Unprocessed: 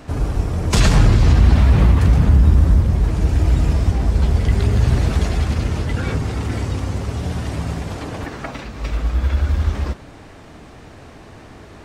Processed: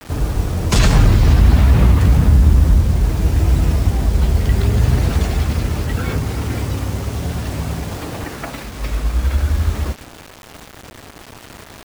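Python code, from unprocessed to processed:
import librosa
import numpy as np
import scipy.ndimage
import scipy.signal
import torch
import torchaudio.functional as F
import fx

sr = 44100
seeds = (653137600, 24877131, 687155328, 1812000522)

y = fx.vibrato(x, sr, rate_hz=0.64, depth_cents=64.0)
y = fx.quant_dither(y, sr, seeds[0], bits=6, dither='none')
y = y * librosa.db_to_amplitude(1.0)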